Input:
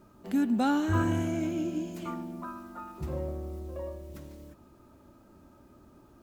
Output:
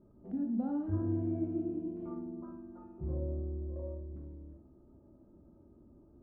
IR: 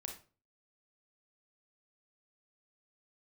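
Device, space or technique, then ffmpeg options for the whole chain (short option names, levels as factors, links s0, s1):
television next door: -filter_complex "[0:a]acompressor=threshold=0.0398:ratio=4,lowpass=500[s0];[1:a]atrim=start_sample=2205[s1];[s0][s1]afir=irnorm=-1:irlink=0"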